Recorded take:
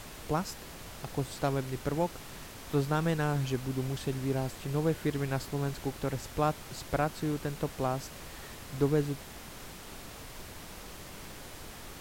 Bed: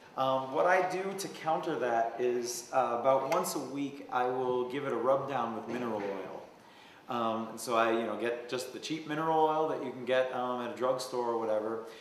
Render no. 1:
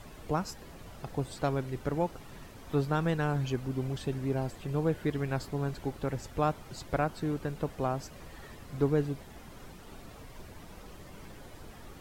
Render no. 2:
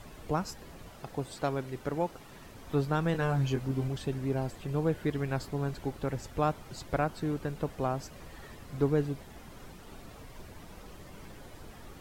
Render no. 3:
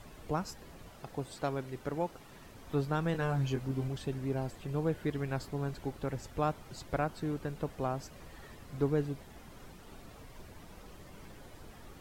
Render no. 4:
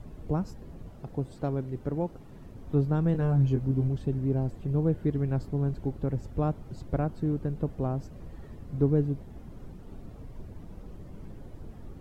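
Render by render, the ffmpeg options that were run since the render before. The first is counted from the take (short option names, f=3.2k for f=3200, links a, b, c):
-af "afftdn=nr=10:nf=-47"
-filter_complex "[0:a]asettb=1/sr,asplit=3[a][b][c];[a]atrim=end=0.884[d];[b]atrim=start=0.88:end=2.46,asetpts=PTS-STARTPTS,afade=t=in:d=0.004:c=qsin,afade=t=out:st=1.576:d=0.004:c=qsin,lowshelf=f=140:g=-7.5[e];[c]atrim=start=2.456[f];[d][e]acrossfade=d=0.004:c1=hsin:c2=qsin[g];[g][f]acrossfade=d=0.004:c1=qsin:c2=hsin,asettb=1/sr,asplit=3[h][i][j];[h]atrim=end=3.124[k];[i]atrim=start=3.12:end=3.88,asetpts=PTS-STARTPTS,afade=t=in:d=0.004:c=qsin,afade=t=out:st=0.756:d=0.004:c=qsin,asplit=2[l][m];[m]adelay=22,volume=-5.5dB[n];[l][n]amix=inputs=2:normalize=0,atrim=end_sample=33516[o];[j]atrim=start=3.876[p];[k][o]acrossfade=d=0.004:c1=hsin:c2=qsin[q];[q][p]acrossfade=d=0.004:c1=qsin:c2=hsin"
-af "volume=-3dB"
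-af "tiltshelf=f=650:g=10"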